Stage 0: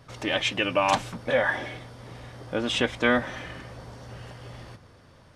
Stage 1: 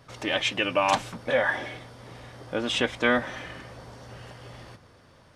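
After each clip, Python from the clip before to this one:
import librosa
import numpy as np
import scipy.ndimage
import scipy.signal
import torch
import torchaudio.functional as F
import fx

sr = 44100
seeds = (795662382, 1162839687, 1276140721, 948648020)

y = fx.low_shelf(x, sr, hz=190.0, db=-4.5)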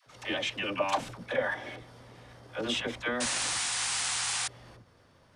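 y = fx.level_steps(x, sr, step_db=10)
y = fx.dispersion(y, sr, late='lows', ms=71.0, hz=520.0)
y = fx.spec_paint(y, sr, seeds[0], shape='noise', start_s=3.2, length_s=1.28, low_hz=690.0, high_hz=10000.0, level_db=-30.0)
y = y * librosa.db_to_amplitude(-1.5)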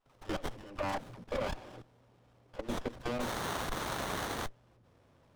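y = fx.level_steps(x, sr, step_db=16)
y = fx.running_max(y, sr, window=17)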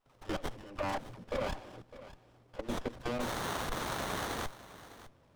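y = x + 10.0 ** (-16.0 / 20.0) * np.pad(x, (int(606 * sr / 1000.0), 0))[:len(x)]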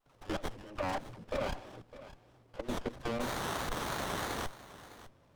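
y = fx.vibrato(x, sr, rate_hz=3.1, depth_cents=85.0)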